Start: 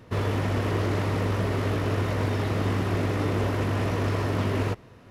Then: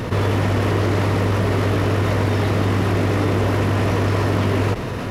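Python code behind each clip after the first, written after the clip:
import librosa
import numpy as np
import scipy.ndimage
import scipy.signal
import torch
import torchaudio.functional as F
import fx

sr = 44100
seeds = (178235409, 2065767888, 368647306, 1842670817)

y = fx.env_flatten(x, sr, amount_pct=70)
y = y * 10.0 ** (5.5 / 20.0)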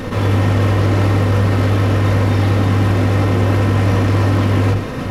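y = fx.room_shoebox(x, sr, seeds[0], volume_m3=2500.0, walls='furnished', distance_m=2.1)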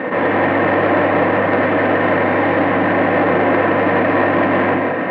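y = fx.cabinet(x, sr, low_hz=220.0, low_slope=24, high_hz=2200.0, hz=(230.0, 400.0, 660.0, 1300.0, 1800.0), db=(-9, -6, 4, -6, 5))
y = y + 10.0 ** (-4.5 / 20.0) * np.pad(y, (int(179 * sr / 1000.0), 0))[:len(y)]
y = fx.transformer_sat(y, sr, knee_hz=690.0)
y = y * 10.0 ** (7.5 / 20.0)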